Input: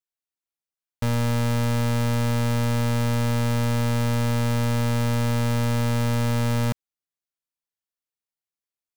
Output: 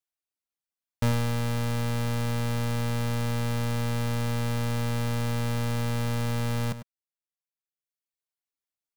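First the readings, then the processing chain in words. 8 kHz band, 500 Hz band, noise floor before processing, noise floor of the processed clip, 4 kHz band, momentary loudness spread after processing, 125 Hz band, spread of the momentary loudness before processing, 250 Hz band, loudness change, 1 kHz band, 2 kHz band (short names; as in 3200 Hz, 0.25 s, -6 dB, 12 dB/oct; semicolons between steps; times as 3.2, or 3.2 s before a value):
-4.5 dB, -5.0 dB, under -85 dBFS, under -85 dBFS, -4.0 dB, 0 LU, -5.0 dB, 1 LU, -6.0 dB, -5.0 dB, -5.0 dB, -4.0 dB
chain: reverb removal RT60 1.2 s; outdoor echo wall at 17 m, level -12 dB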